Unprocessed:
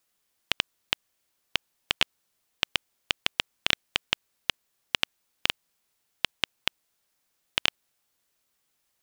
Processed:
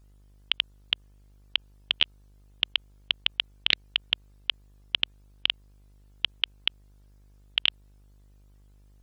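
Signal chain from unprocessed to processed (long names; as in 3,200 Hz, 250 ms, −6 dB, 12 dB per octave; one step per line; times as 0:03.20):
expanding power law on the bin magnitudes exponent 2.1
hum with harmonics 50 Hz, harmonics 36, −58 dBFS −9 dB per octave
highs frequency-modulated by the lows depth 0.22 ms
level +1.5 dB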